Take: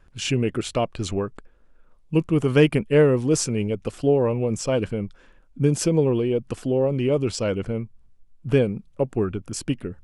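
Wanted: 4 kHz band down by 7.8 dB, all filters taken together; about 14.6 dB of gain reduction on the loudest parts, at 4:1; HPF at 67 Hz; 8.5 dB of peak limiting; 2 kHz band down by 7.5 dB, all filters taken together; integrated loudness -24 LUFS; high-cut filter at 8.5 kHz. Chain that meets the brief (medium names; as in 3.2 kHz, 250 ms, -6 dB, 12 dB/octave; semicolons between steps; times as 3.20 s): high-pass 67 Hz; low-pass 8.5 kHz; peaking EQ 2 kHz -7.5 dB; peaking EQ 4 kHz -8.5 dB; compression 4:1, threshold -30 dBFS; trim +13 dB; peak limiter -14.5 dBFS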